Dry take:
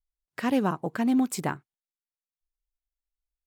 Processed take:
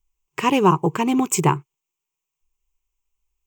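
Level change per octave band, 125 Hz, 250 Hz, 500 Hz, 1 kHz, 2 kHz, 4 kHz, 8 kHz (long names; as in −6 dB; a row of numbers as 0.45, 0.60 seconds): +13.0, +4.5, +10.0, +12.5, +7.0, +11.0, +13.0 decibels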